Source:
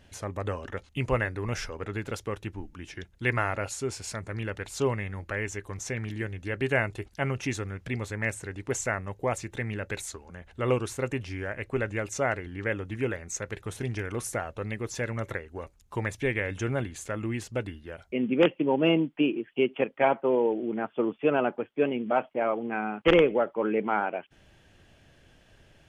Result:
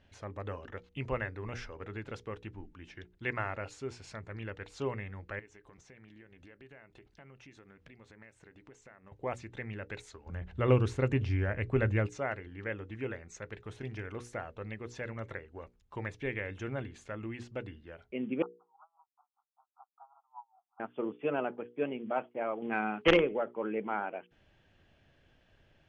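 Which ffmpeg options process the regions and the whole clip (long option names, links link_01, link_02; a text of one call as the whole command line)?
ffmpeg -i in.wav -filter_complex "[0:a]asettb=1/sr,asplit=3[link_01][link_02][link_03];[link_01]atrim=end=5.394[link_04];[link_02]atrim=start=5.39:end=9.12,asetpts=PTS-STARTPTS,afade=type=in:duration=0.004:curve=qsin,afade=type=out:start_time=3.726:duration=0.004:curve=qsin,equalizer=frequency=98:width_type=o:width=0.26:gain=-15,acompressor=threshold=-44dB:ratio=6:attack=3.2:release=140:knee=1:detection=peak[link_05];[link_03]atrim=start=9.116[link_06];[link_04][link_05]acrossfade=duration=0.004:curve1=hsin:curve2=qsin[link_07];[link_07][link_06]acrossfade=duration=0.004:curve1=qsin:curve2=hsin,asettb=1/sr,asplit=3[link_08][link_09][link_10];[link_08]atrim=end=10.264[link_11];[link_09]atrim=start=10.26:end=12.07,asetpts=PTS-STARTPTS,afade=type=in:duration=0.004:curve=qsin,afade=type=out:start_time=1.806:duration=0.004:curve=qsin,equalizer=frequency=71:width_type=o:width=2.9:gain=11,acontrast=36[link_12];[link_10]atrim=start=12.066[link_13];[link_11][link_12]acrossfade=duration=0.004:curve1=hsin:curve2=qsin[link_14];[link_14][link_13]acrossfade=duration=0.004:curve1=qsin:curve2=hsin,asettb=1/sr,asplit=3[link_15][link_16][link_17];[link_15]atrim=end=18.424[link_18];[link_16]atrim=start=18.42:end=20.8,asetpts=PTS-STARTPTS,afade=type=in:duration=0.004:curve=qsin,afade=type=out:start_time=2.376:duration=0.004:curve=qsin,asuperpass=centerf=1000:order=20:qfactor=1.5,aeval=exprs='val(0)*pow(10,-35*(0.5-0.5*cos(2*PI*5.1*n/s))/20)':channel_layout=same[link_19];[link_17]atrim=start=20.796[link_20];[link_18][link_19]acrossfade=duration=0.004:curve1=hsin:curve2=qsin[link_21];[link_21][link_20]acrossfade=duration=0.004:curve1=qsin:curve2=hsin,asettb=1/sr,asplit=3[link_22][link_23][link_24];[link_22]atrim=end=22.624[link_25];[link_23]atrim=start=22.62:end=23.17,asetpts=PTS-STARTPTS,afade=type=in:duration=0.004:curve=qsin,afade=type=out:start_time=0.546:duration=0.004:curve=qsin,highshelf=frequency=2600:gain=7.5,volume=10.5dB,asoftclip=hard,volume=-10.5dB,acontrast=26[link_26];[link_24]atrim=start=23.166[link_27];[link_25][link_26]acrossfade=duration=0.004:curve1=hsin:curve2=qsin[link_28];[link_28][link_27]acrossfade=duration=0.004:curve1=qsin:curve2=hsin,lowpass=4200,bandreject=frequency=60:width_type=h:width=6,bandreject=frequency=120:width_type=h:width=6,bandreject=frequency=180:width_type=h:width=6,bandreject=frequency=240:width_type=h:width=6,bandreject=frequency=300:width_type=h:width=6,bandreject=frequency=360:width_type=h:width=6,bandreject=frequency=420:width_type=h:width=6,bandreject=frequency=480:width_type=h:width=6,volume=-7.5dB" out.wav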